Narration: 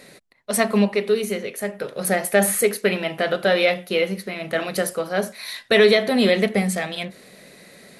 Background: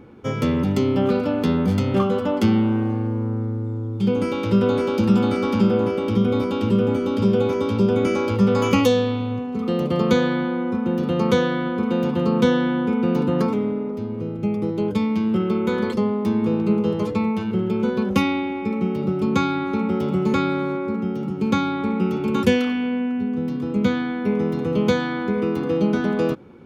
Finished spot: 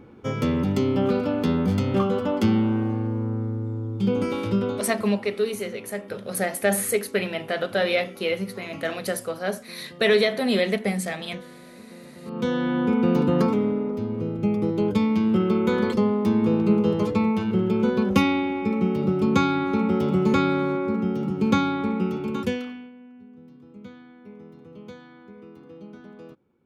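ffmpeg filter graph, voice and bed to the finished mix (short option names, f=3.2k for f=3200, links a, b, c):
-filter_complex "[0:a]adelay=4300,volume=-4.5dB[a];[1:a]volume=21dB,afade=t=out:st=4.35:d=0.69:silence=0.0891251,afade=t=in:st=12.22:d=0.67:silence=0.0668344,afade=t=out:st=21.54:d=1.38:silence=0.0707946[b];[a][b]amix=inputs=2:normalize=0"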